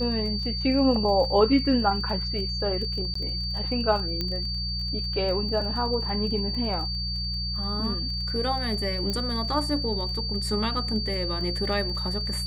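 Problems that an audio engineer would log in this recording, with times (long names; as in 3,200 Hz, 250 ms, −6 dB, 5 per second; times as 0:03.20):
surface crackle 28 per second −34 dBFS
mains hum 60 Hz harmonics 3 −32 dBFS
whistle 4,600 Hz −30 dBFS
0:03.14–0:03.15: drop-out 14 ms
0:04.21: click −15 dBFS
0:09.10: click −16 dBFS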